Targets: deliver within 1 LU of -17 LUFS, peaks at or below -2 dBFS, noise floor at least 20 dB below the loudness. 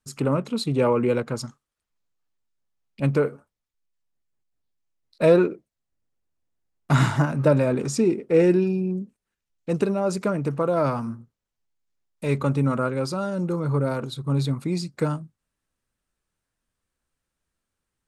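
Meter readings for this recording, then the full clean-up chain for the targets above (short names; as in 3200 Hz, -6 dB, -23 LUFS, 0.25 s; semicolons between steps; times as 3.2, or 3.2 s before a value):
loudness -23.5 LUFS; peak -6.5 dBFS; loudness target -17.0 LUFS
-> gain +6.5 dB; limiter -2 dBFS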